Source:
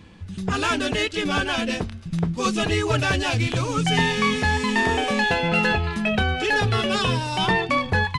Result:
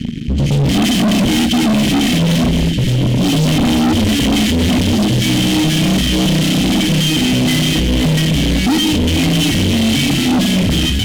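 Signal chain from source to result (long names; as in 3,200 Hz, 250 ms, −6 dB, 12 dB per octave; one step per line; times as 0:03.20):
fuzz pedal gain 39 dB, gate −47 dBFS
flat-topped bell 690 Hz −15.5 dB 1.1 octaves
wrong playback speed 45 rpm record played at 33 rpm
on a send: echo with a time of its own for lows and highs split 300 Hz, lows 83 ms, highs 518 ms, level −8.5 dB
on the sum: automatic gain control gain up to 4 dB
Butterworth band-reject 1,000 Hz, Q 0.53
hollow resonant body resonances 240/3,100 Hz, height 15 dB, ringing for 25 ms
gain into a clipping stage and back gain 10 dB
amplitude modulation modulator 180 Hz, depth 15%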